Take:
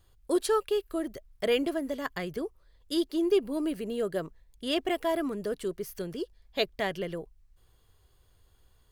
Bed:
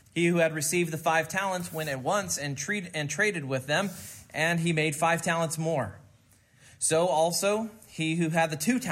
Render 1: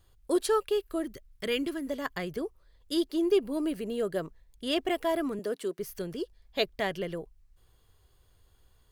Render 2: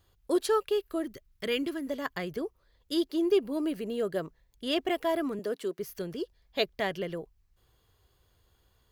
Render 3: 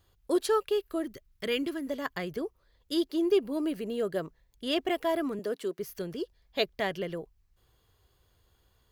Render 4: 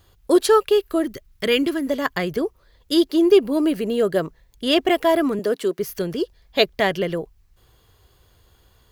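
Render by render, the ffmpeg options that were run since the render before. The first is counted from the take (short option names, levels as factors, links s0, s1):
-filter_complex "[0:a]asettb=1/sr,asplit=3[s0][s1][s2];[s0]atrim=end=1.044[s3];[s1]atrim=start=1.04:end=1.87,asetpts=PTS-STARTPTS,afade=t=in:d=0.004:c=qsin,afade=t=out:st=0.826:d=0.004:c=qsin,equalizer=f=680:t=o:w=0.81:g=-13.5[s4];[s2]atrim=start=1.866[s5];[s3][s4]acrossfade=d=0.004:c1=hsin:c2=qsin[s6];[s6][s5]acrossfade=d=0.004:c1=qsin:c2=hsin,asettb=1/sr,asplit=3[s7][s8][s9];[s7]atrim=end=5.394[s10];[s8]atrim=start=5.39:end=5.79,asetpts=PTS-STARTPTS,afade=t=in:d=0.004:c=qsin,afade=t=out:st=0.396:d=0.004:c=qsin,highpass=f=210:w=0.5412,highpass=f=210:w=1.3066[s11];[s9]atrim=start=5.786[s12];[s10][s11]acrossfade=d=0.004:c1=hsin:c2=qsin[s13];[s13][s12]acrossfade=d=0.004:c1=qsin:c2=hsin"
-af "highpass=f=65:p=1,equalizer=f=9000:w=2.6:g=-6"
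-af anull
-af "volume=3.55"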